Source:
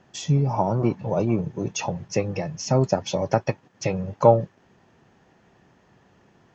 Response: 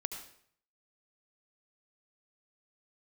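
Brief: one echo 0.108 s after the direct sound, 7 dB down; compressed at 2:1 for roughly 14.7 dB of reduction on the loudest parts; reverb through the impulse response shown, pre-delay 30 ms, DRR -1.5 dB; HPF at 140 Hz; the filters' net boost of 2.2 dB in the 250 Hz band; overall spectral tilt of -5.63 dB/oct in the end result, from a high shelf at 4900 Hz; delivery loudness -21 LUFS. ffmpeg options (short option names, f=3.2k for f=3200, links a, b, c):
-filter_complex "[0:a]highpass=140,equalizer=f=250:t=o:g=4,highshelf=f=4.9k:g=-6,acompressor=threshold=-37dB:ratio=2,aecho=1:1:108:0.447,asplit=2[a][b];[1:a]atrim=start_sample=2205,adelay=30[c];[b][c]afir=irnorm=-1:irlink=0,volume=1dB[d];[a][d]amix=inputs=2:normalize=0,volume=9.5dB"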